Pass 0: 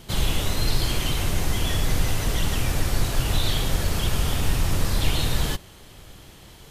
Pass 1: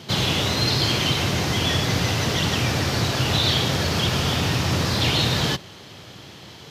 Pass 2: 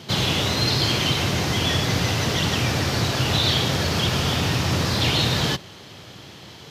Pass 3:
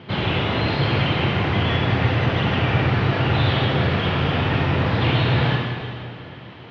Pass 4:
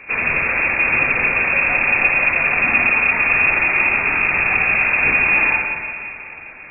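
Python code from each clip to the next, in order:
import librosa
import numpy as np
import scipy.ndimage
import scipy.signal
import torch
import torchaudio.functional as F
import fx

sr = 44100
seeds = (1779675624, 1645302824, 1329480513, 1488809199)

y1 = scipy.signal.sosfilt(scipy.signal.butter(4, 96.0, 'highpass', fs=sr, output='sos'), x)
y1 = fx.high_shelf_res(y1, sr, hz=7000.0, db=-9.5, q=1.5)
y1 = F.gain(torch.from_numpy(y1), 6.0).numpy()
y2 = y1
y3 = scipy.signal.sosfilt(scipy.signal.butter(4, 2800.0, 'lowpass', fs=sr, output='sos'), y2)
y3 = fx.rev_plate(y3, sr, seeds[0], rt60_s=2.4, hf_ratio=0.9, predelay_ms=0, drr_db=0.0)
y4 = fx.freq_invert(y3, sr, carrier_hz=2600)
y4 = F.gain(torch.from_numpy(y4), 3.0).numpy()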